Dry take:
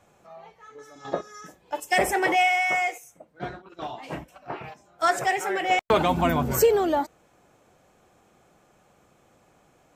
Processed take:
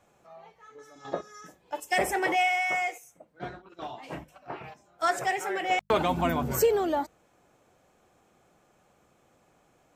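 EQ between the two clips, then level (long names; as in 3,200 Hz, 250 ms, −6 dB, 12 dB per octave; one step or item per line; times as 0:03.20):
mains-hum notches 50/100/150/200 Hz
−4.0 dB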